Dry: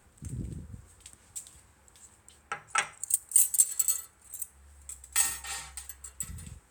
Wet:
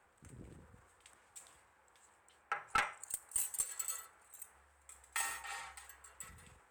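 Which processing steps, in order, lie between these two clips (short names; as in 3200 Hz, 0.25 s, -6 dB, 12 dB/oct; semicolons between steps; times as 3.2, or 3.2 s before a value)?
three-band isolator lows -17 dB, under 440 Hz, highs -13 dB, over 2500 Hz; one-sided clip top -27.5 dBFS; transient shaper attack +1 dB, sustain +5 dB; gain -2 dB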